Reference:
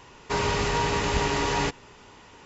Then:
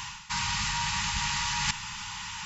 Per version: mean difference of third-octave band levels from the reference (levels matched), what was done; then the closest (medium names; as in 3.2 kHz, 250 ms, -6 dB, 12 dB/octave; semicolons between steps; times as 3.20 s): 13.0 dB: FFT band-reject 220–800 Hz; treble shelf 2.2 kHz +12 dB; reverse; compression 16:1, threshold -35 dBFS, peak gain reduction 17.5 dB; reverse; trim +8.5 dB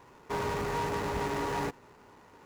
4.5 dB: median filter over 15 samples; bass shelf 75 Hz -10.5 dB; in parallel at -9.5 dB: wavefolder -26.5 dBFS; on the sum: trim -6 dB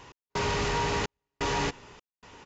9.0 dB: trance gate "x..xxxxxx...xxxx" 128 bpm -60 dB; saturation -22.5 dBFS, distortion -14 dB; resampled via 16 kHz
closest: second